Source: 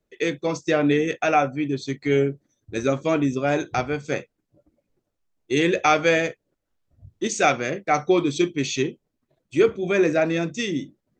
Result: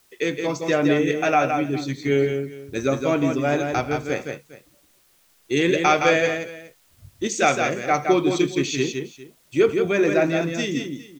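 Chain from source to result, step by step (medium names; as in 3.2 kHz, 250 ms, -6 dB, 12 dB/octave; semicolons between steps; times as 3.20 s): multi-tap echo 82/167/408 ms -20/-5.5/-19 dB; word length cut 10-bit, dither triangular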